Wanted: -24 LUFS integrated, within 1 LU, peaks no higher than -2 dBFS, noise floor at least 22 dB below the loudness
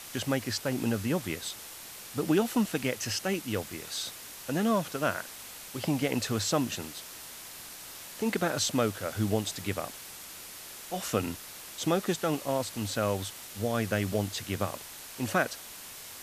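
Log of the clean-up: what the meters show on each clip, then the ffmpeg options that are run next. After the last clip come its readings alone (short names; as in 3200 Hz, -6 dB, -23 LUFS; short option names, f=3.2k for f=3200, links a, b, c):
noise floor -45 dBFS; noise floor target -54 dBFS; loudness -31.5 LUFS; peak -12.5 dBFS; loudness target -24.0 LUFS
-> -af "afftdn=nr=9:nf=-45"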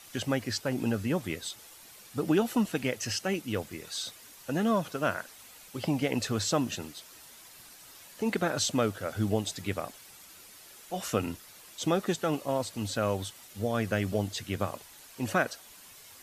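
noise floor -52 dBFS; noise floor target -54 dBFS
-> -af "afftdn=nr=6:nf=-52"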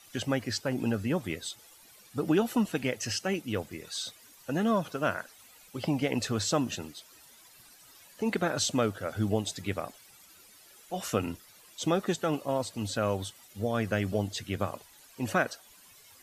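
noise floor -56 dBFS; loudness -31.5 LUFS; peak -13.0 dBFS; loudness target -24.0 LUFS
-> -af "volume=7.5dB"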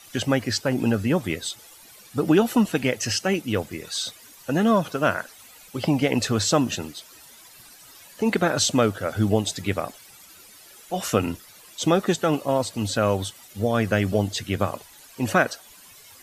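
loudness -24.0 LUFS; peak -5.5 dBFS; noise floor -49 dBFS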